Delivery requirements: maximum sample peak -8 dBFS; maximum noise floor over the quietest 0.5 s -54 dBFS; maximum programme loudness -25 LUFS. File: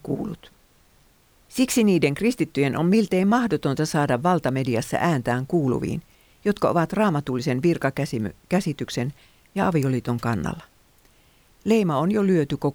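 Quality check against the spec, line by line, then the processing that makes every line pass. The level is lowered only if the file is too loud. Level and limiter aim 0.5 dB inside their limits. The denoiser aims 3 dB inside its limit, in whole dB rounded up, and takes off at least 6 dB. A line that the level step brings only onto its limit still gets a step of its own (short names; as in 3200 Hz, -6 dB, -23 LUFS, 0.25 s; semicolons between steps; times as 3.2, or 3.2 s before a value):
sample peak -5.5 dBFS: fail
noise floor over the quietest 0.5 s -58 dBFS: OK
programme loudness -23.0 LUFS: fail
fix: gain -2.5 dB; limiter -8.5 dBFS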